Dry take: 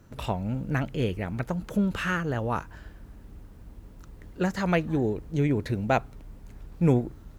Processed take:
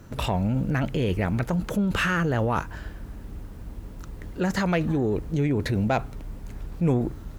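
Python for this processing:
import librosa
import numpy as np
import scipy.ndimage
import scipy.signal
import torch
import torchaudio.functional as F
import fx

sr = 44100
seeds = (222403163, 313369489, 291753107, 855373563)

p1 = fx.over_compress(x, sr, threshold_db=-30.0, ratio=-0.5)
p2 = x + (p1 * 10.0 ** (-0.5 / 20.0))
y = 10.0 ** (-12.5 / 20.0) * np.tanh(p2 / 10.0 ** (-12.5 / 20.0))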